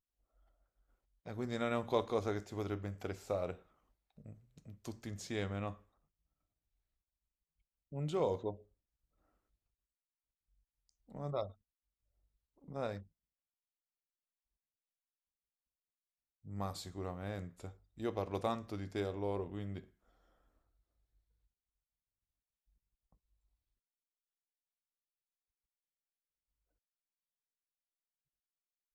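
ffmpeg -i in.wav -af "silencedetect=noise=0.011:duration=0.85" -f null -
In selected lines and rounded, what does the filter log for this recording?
silence_start: 0.00
silence_end: 1.27 | silence_duration: 1.27
silence_start: 3.53
silence_end: 4.85 | silence_duration: 1.33
silence_start: 5.72
silence_end: 7.94 | silence_duration: 2.22
silence_start: 8.51
silence_end: 11.15 | silence_duration: 2.63
silence_start: 11.46
silence_end: 12.74 | silence_duration: 1.29
silence_start: 12.98
silence_end: 16.53 | silence_duration: 3.55
silence_start: 19.79
silence_end: 28.94 | silence_duration: 9.15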